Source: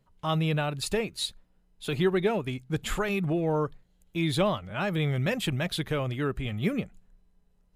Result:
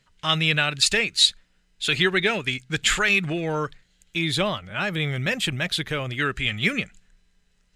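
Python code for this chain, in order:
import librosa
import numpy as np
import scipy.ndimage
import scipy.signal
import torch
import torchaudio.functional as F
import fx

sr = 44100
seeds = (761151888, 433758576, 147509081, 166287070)

y = fx.band_shelf(x, sr, hz=3500.0, db=fx.steps((0.0, 15.0), (4.17, 8.0), (6.17, 15.5)), octaves=2.9)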